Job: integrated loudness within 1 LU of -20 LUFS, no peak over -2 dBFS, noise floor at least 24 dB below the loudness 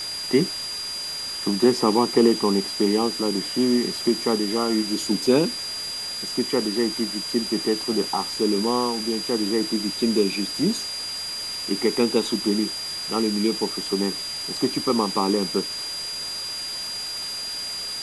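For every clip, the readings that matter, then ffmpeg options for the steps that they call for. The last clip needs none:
steady tone 4.8 kHz; tone level -29 dBFS; noise floor -31 dBFS; noise floor target -48 dBFS; loudness -23.5 LUFS; peak level -4.5 dBFS; loudness target -20.0 LUFS
-> -af "bandreject=f=4800:w=30"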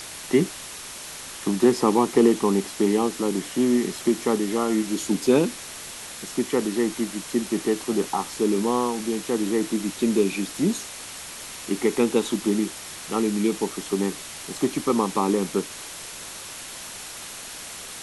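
steady tone not found; noise floor -38 dBFS; noise floor target -48 dBFS
-> -af "afftdn=nr=10:nf=-38"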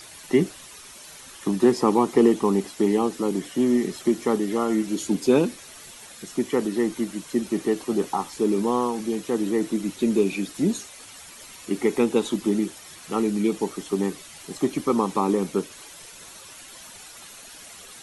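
noise floor -44 dBFS; noise floor target -48 dBFS
-> -af "afftdn=nr=6:nf=-44"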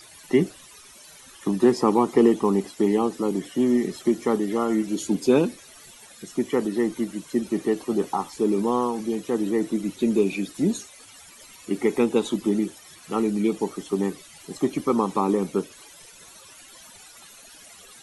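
noise floor -48 dBFS; loudness -24.0 LUFS; peak level -5.0 dBFS; loudness target -20.0 LUFS
-> -af "volume=1.58,alimiter=limit=0.794:level=0:latency=1"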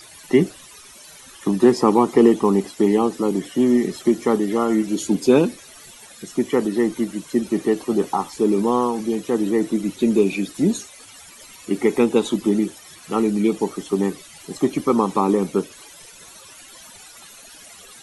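loudness -20.0 LUFS; peak level -2.0 dBFS; noise floor -44 dBFS

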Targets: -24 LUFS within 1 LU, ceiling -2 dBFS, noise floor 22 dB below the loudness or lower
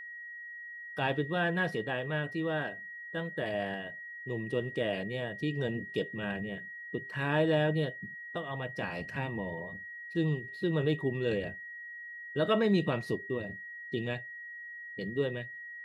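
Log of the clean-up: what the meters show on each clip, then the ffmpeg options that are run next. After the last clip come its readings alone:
steady tone 1.9 kHz; tone level -42 dBFS; loudness -34.0 LUFS; peak level -16.5 dBFS; loudness target -24.0 LUFS
-> -af "bandreject=f=1900:w=30"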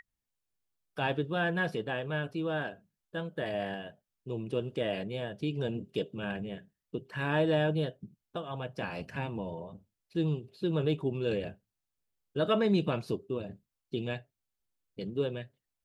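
steady tone not found; loudness -33.5 LUFS; peak level -16.5 dBFS; loudness target -24.0 LUFS
-> -af "volume=2.99"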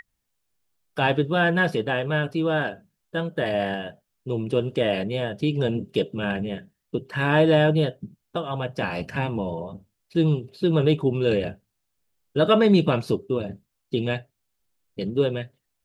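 loudness -24.0 LUFS; peak level -7.0 dBFS; noise floor -77 dBFS

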